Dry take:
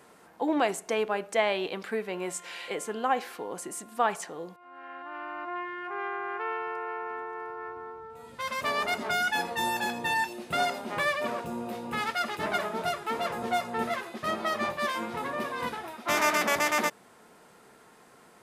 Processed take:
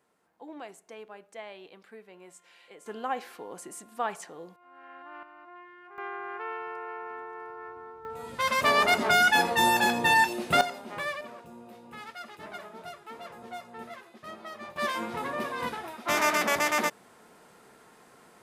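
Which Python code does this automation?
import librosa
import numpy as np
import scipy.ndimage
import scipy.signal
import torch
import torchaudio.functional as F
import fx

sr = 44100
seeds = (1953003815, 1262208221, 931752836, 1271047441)

y = fx.gain(x, sr, db=fx.steps((0.0, -17.0), (2.86, -5.0), (5.23, -13.5), (5.98, -3.5), (8.05, 6.5), (10.61, -5.5), (11.21, -12.5), (14.76, 0.0)))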